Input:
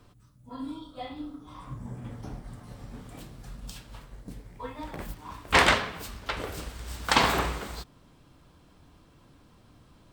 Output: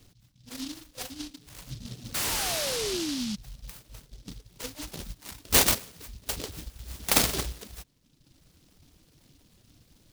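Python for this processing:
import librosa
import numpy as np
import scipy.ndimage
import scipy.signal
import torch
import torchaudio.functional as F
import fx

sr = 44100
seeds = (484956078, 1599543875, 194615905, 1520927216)

y = fx.spec_paint(x, sr, seeds[0], shape='fall', start_s=2.14, length_s=1.22, low_hz=200.0, high_hz=1200.0, level_db=-29.0)
y = fx.dereverb_blind(y, sr, rt60_s=1.1)
y = fx.noise_mod_delay(y, sr, seeds[1], noise_hz=4200.0, depth_ms=0.31)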